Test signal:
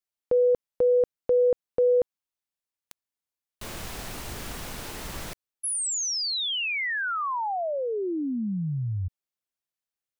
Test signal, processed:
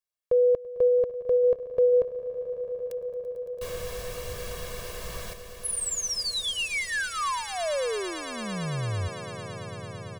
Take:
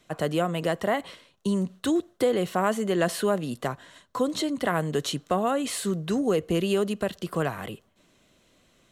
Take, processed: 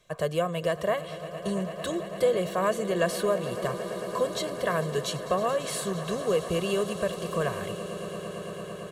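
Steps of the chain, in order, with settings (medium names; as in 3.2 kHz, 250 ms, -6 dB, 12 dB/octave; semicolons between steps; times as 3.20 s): comb 1.8 ms, depth 78%; on a send: echo with a slow build-up 112 ms, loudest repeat 8, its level -17.5 dB; on the sum: trim -4 dB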